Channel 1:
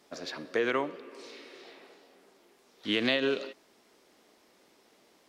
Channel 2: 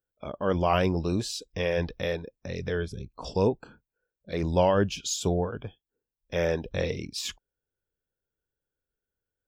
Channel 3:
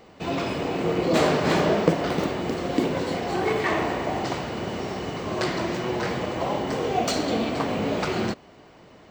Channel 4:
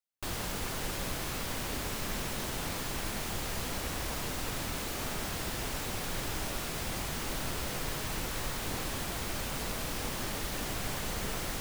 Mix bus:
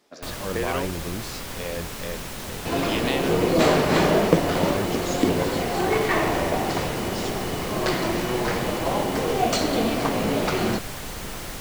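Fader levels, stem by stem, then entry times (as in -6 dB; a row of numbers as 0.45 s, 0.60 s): -1.0 dB, -5.5 dB, +2.0 dB, +1.5 dB; 0.00 s, 0.00 s, 2.45 s, 0.00 s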